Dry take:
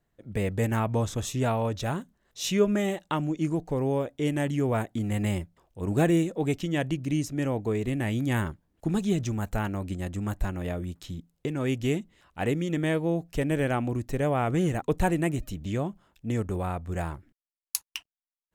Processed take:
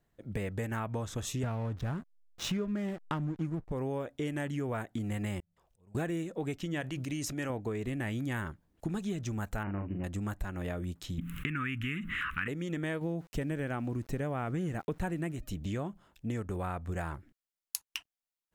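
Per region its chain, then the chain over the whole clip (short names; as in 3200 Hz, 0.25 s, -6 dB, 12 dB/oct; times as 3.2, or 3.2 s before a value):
1.43–3.72 tone controls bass +10 dB, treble -4 dB + backlash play -31.5 dBFS
5.4–5.95 bell 300 Hz -14.5 dB 0.3 oct + compressor 10:1, threshold -44 dBFS + auto swell 0.44 s
6.81–7.5 low shelf 450 Hz -8 dB + sustainer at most 47 dB/s
9.63–10.04 median filter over 25 samples + brick-wall FIR low-pass 3000 Hz + doubler 40 ms -5 dB
11.18–12.48 EQ curve 260 Hz 0 dB, 490 Hz -19 dB, 740 Hz -27 dB, 1200 Hz +8 dB, 2700 Hz +9 dB, 4700 Hz -17 dB, 11000 Hz -3 dB + fast leveller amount 70%
13.01–15.33 bell 180 Hz +5.5 dB 2 oct + sample gate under -47.5 dBFS
whole clip: dynamic EQ 1500 Hz, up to +6 dB, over -46 dBFS, Q 1.5; compressor 6:1, threshold -32 dBFS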